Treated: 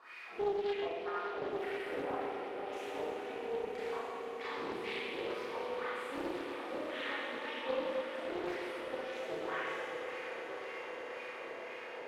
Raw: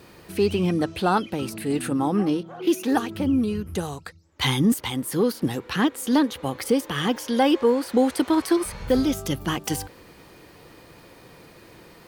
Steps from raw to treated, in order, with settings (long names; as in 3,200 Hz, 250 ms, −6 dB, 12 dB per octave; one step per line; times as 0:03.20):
pitch shifter gated in a rhythm +2 semitones, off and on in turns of 163 ms
bass and treble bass −11 dB, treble +3 dB
transient designer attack −10 dB, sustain +3 dB
downward compressor 10 to 1, threshold −38 dBFS, peak gain reduction 19.5 dB
LFO wah 1.9 Hz 400–2,500 Hz, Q 6.5
echo that builds up and dies away 121 ms, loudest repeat 8, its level −16 dB
four-comb reverb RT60 2.2 s, combs from 25 ms, DRR −10 dB
highs frequency-modulated by the lows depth 0.37 ms
level +4.5 dB